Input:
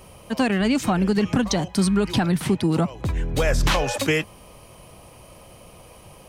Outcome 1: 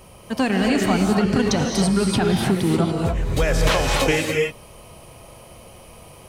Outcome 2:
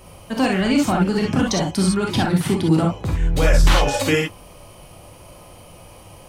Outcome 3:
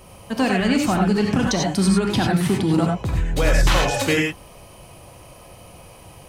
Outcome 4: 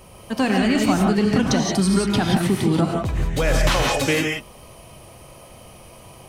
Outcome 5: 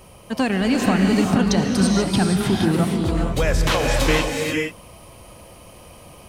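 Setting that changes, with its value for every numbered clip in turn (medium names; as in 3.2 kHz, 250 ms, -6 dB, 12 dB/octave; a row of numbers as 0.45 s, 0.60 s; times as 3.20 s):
gated-style reverb, gate: 310 ms, 80 ms, 120 ms, 200 ms, 510 ms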